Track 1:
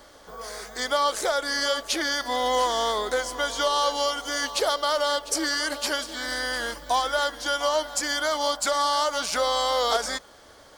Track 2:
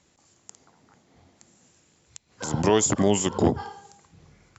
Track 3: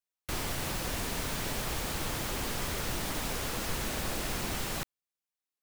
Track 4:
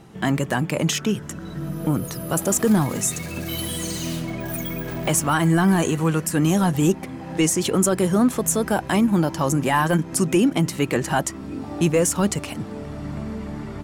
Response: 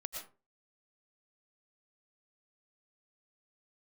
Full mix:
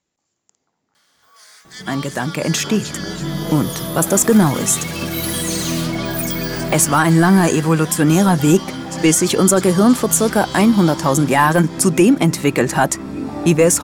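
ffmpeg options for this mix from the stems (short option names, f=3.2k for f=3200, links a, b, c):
-filter_complex "[0:a]highpass=1.5k,adelay=950,volume=-5dB,asplit=2[a][b];[b]volume=-6.5dB[c];[1:a]volume=-12.5dB[d];[3:a]equalizer=f=3k:w=6.2:g=6,bandreject=f=3k:w=5.4,dynaudnorm=f=190:g=9:m=10.5dB,adelay=1650,volume=-0.5dB[e];[c]aecho=0:1:325|650|975|1300|1625|1950|2275|2600|2925:1|0.59|0.348|0.205|0.121|0.0715|0.0422|0.0249|0.0147[f];[a][d][e][f]amix=inputs=4:normalize=0,equalizer=f=84:t=o:w=1.2:g=-5"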